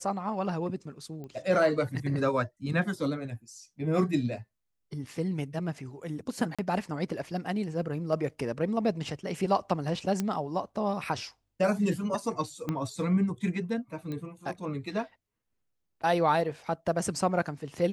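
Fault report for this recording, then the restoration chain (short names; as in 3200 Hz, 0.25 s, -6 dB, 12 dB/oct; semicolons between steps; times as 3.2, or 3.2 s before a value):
1.24 pop -31 dBFS
6.55–6.59 gap 36 ms
10.2 pop -16 dBFS
12.69 pop -18 dBFS
14.12 pop -25 dBFS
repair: de-click; interpolate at 6.55, 36 ms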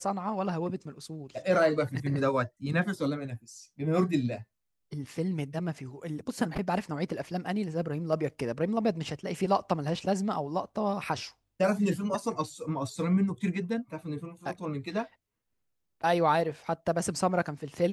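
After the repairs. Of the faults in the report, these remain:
1.24 pop
12.69 pop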